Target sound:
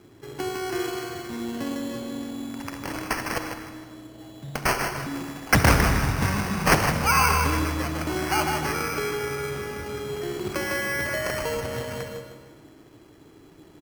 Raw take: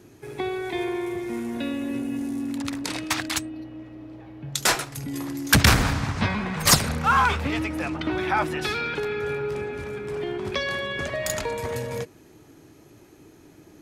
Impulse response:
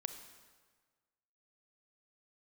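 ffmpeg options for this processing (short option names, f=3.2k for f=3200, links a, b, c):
-filter_complex "[0:a]asplit=2[a][b];[b]adelay=155,lowpass=f=3.7k:p=1,volume=-4.5dB,asplit=2[c][d];[d]adelay=155,lowpass=f=3.7k:p=1,volume=0.38,asplit=2[e][f];[f]adelay=155,lowpass=f=3.7k:p=1,volume=0.38,asplit=2[g][h];[h]adelay=155,lowpass=f=3.7k:p=1,volume=0.38,asplit=2[i][j];[j]adelay=155,lowpass=f=3.7k:p=1,volume=0.38[k];[a][c][e][g][i][k]amix=inputs=6:normalize=0,acrusher=samples=12:mix=1:aa=0.000001[l];[1:a]atrim=start_sample=2205,asetrate=41895,aresample=44100[m];[l][m]afir=irnorm=-1:irlink=0"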